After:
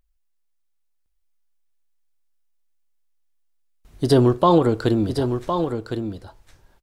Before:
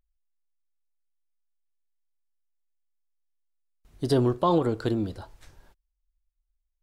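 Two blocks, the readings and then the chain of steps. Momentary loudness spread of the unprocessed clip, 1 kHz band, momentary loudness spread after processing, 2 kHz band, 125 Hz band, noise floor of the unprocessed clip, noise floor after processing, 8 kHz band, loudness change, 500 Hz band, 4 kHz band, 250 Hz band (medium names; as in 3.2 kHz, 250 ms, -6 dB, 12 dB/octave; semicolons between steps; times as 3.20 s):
12 LU, +7.5 dB, 13 LU, +7.5 dB, +7.5 dB, -80 dBFS, -68 dBFS, +7.5 dB, +5.5 dB, +7.5 dB, +7.5 dB, +7.5 dB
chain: delay 1060 ms -7.5 dB; trim +7 dB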